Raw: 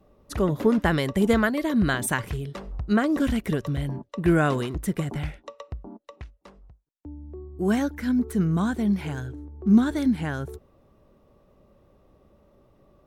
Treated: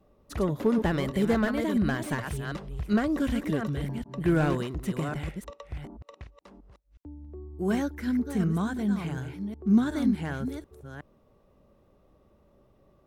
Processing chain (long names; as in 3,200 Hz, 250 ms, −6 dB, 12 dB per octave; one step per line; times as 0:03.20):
delay that plays each chunk backwards 367 ms, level −8 dB
slew-rate limiting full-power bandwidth 100 Hz
level −4 dB